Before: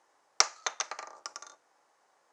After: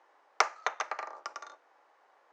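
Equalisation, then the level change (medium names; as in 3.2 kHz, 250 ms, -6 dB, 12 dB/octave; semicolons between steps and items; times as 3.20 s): treble shelf 8.9 kHz -5 dB; dynamic bell 3.9 kHz, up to -8 dB, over -46 dBFS, Q 1.1; three-band isolator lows -21 dB, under 270 Hz, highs -17 dB, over 3.8 kHz; +5.0 dB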